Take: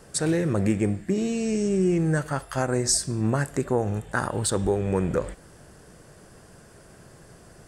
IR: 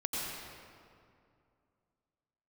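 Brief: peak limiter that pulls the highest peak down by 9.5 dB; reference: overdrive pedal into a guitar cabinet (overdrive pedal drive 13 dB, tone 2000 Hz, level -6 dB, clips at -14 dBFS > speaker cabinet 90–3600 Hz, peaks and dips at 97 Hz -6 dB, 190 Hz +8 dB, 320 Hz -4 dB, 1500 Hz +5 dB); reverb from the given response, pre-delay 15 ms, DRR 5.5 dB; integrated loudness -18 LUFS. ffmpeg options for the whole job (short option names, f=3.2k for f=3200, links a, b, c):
-filter_complex "[0:a]alimiter=limit=-19dB:level=0:latency=1,asplit=2[a][b];[1:a]atrim=start_sample=2205,adelay=15[c];[b][c]afir=irnorm=-1:irlink=0,volume=-10.5dB[d];[a][d]amix=inputs=2:normalize=0,asplit=2[e][f];[f]highpass=f=720:p=1,volume=13dB,asoftclip=type=tanh:threshold=-14dB[g];[e][g]amix=inputs=2:normalize=0,lowpass=f=2k:p=1,volume=-6dB,highpass=90,equalizer=f=97:t=q:w=4:g=-6,equalizer=f=190:t=q:w=4:g=8,equalizer=f=320:t=q:w=4:g=-4,equalizer=f=1.5k:t=q:w=4:g=5,lowpass=f=3.6k:w=0.5412,lowpass=f=3.6k:w=1.3066,volume=8dB"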